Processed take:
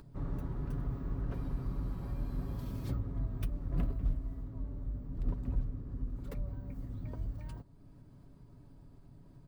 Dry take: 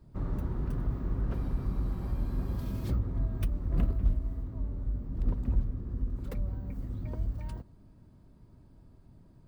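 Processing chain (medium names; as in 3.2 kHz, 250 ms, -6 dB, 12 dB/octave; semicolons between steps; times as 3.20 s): comb 7.1 ms, depth 41%; upward compressor, threshold -43 dBFS; trim -4.5 dB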